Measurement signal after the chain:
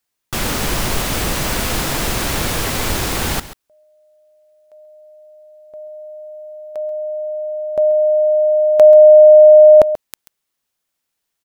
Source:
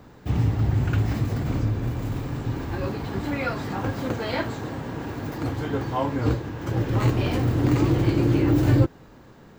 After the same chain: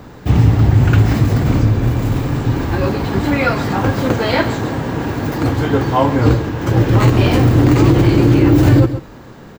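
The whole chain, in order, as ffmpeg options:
-af "aecho=1:1:135:0.178,alimiter=level_in=4.22:limit=0.891:release=50:level=0:latency=1,volume=0.891"

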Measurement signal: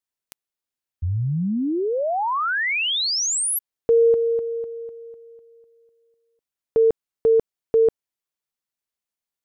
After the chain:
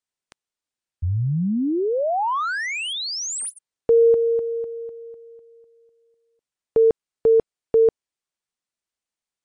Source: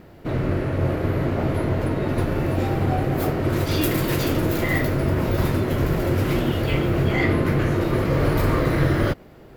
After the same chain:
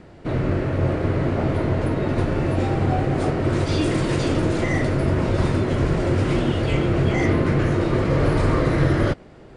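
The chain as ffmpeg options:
-filter_complex "[0:a]acrossover=split=760|1000[s0][s1][s2];[s2]asoftclip=type=tanh:threshold=0.0422[s3];[s0][s1][s3]amix=inputs=3:normalize=0,volume=1.19" -ar 22050 -c:a libmp3lame -b:a 96k

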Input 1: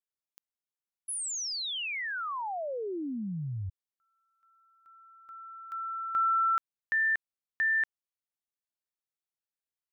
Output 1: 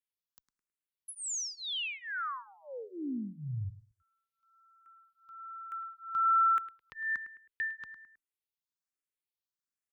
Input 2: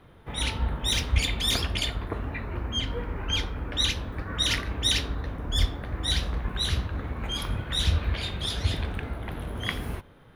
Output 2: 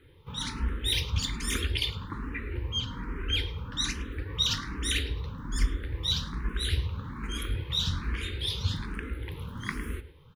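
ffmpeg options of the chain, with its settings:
-filter_complex "[0:a]asuperstop=centerf=680:order=4:qfactor=1.5,asplit=2[s0][s1];[s1]adelay=106,lowpass=f=3100:p=1,volume=0.224,asplit=2[s2][s3];[s3]adelay=106,lowpass=f=3100:p=1,volume=0.35,asplit=2[s4][s5];[s5]adelay=106,lowpass=f=3100:p=1,volume=0.35[s6];[s2][s4][s6]amix=inputs=3:normalize=0[s7];[s0][s7]amix=inputs=2:normalize=0,asplit=2[s8][s9];[s9]afreqshift=1.2[s10];[s8][s10]amix=inputs=2:normalize=1"

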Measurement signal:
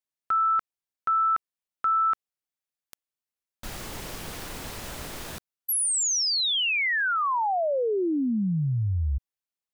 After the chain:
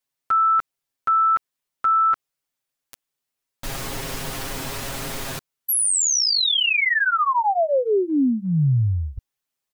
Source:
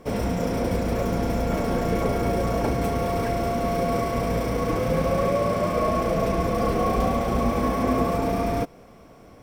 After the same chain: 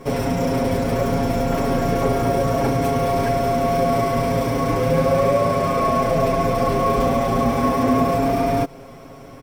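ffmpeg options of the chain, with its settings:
-filter_complex "[0:a]aecho=1:1:7.4:0.95,asplit=2[s0][s1];[s1]acompressor=threshold=0.0355:ratio=6:attack=0.13:release=118:knee=1:detection=peak,volume=0.944[s2];[s0][s2]amix=inputs=2:normalize=0"

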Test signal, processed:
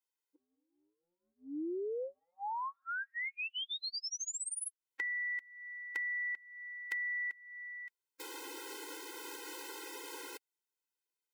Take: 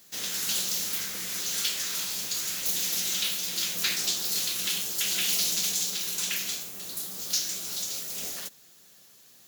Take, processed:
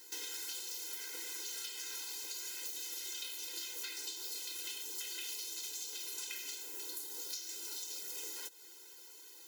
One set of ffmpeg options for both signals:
-af "acompressor=threshold=0.00891:ratio=8,afftfilt=real='re*eq(mod(floor(b*sr/1024/270),2),1)':imag='im*eq(mod(floor(b*sr/1024/270),2),1)':win_size=1024:overlap=0.75,volume=1.58"

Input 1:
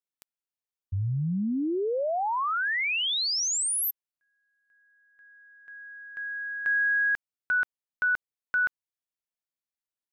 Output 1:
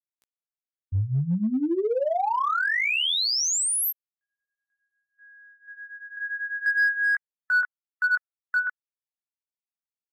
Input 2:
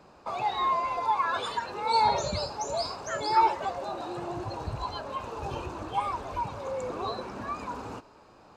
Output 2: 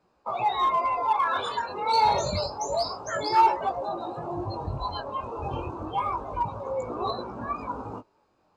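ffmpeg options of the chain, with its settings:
-filter_complex "[0:a]afftdn=nr=17:nf=-40,flanger=delay=16.5:depth=7.2:speed=0.28,asplit=2[s0][s1];[s1]asoftclip=type=hard:threshold=0.0473,volume=0.501[s2];[s0][s2]amix=inputs=2:normalize=0,volume=1.33"

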